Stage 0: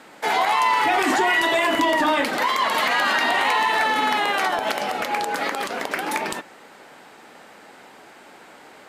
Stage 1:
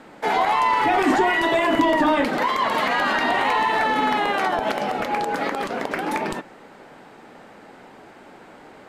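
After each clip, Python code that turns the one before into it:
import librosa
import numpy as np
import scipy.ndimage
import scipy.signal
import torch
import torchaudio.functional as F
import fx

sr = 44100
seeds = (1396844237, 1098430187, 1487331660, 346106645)

y = fx.tilt_eq(x, sr, slope=-2.5)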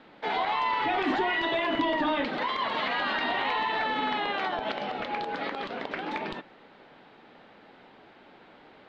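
y = fx.ladder_lowpass(x, sr, hz=4400.0, resonance_pct=45)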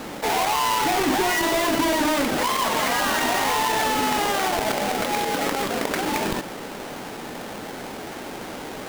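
y = fx.halfwave_hold(x, sr)
y = fx.env_flatten(y, sr, amount_pct=50)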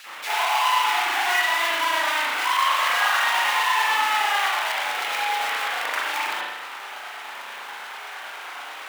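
y = fx.filter_lfo_highpass(x, sr, shape='sine', hz=9.2, low_hz=980.0, high_hz=3000.0, q=1.8)
y = fx.rev_spring(y, sr, rt60_s=1.0, pass_ms=(36,), chirp_ms=45, drr_db=-6.0)
y = F.gain(torch.from_numpy(y), -5.0).numpy()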